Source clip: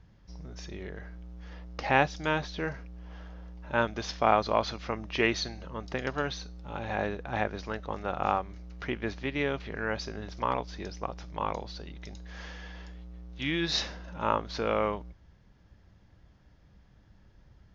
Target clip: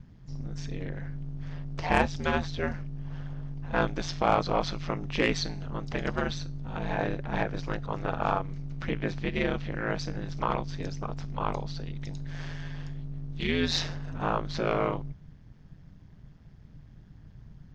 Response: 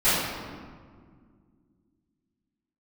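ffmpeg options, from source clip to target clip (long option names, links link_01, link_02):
-filter_complex "[0:a]aeval=exprs='0.473*(cos(1*acos(clip(val(0)/0.473,-1,1)))-cos(1*PI/2))+0.0422*(cos(5*acos(clip(val(0)/0.473,-1,1)))-cos(5*PI/2))':channel_layout=same,lowshelf=frequency=110:gain=11,asplit=2[link_01][link_02];[link_02]asetrate=55563,aresample=44100,atempo=0.793701,volume=-14dB[link_03];[link_01][link_03]amix=inputs=2:normalize=0,aeval=exprs='val(0)*sin(2*PI*84*n/s)':channel_layout=same"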